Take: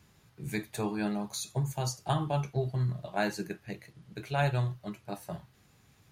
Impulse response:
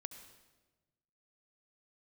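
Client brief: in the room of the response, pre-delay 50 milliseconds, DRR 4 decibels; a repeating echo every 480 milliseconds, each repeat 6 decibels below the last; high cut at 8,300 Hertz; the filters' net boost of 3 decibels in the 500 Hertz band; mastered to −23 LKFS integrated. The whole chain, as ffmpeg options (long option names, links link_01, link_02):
-filter_complex "[0:a]lowpass=8300,equalizer=frequency=500:width_type=o:gain=4,aecho=1:1:480|960|1440|1920|2400|2880:0.501|0.251|0.125|0.0626|0.0313|0.0157,asplit=2[link_01][link_02];[1:a]atrim=start_sample=2205,adelay=50[link_03];[link_02][link_03]afir=irnorm=-1:irlink=0,volume=0dB[link_04];[link_01][link_04]amix=inputs=2:normalize=0,volume=7dB"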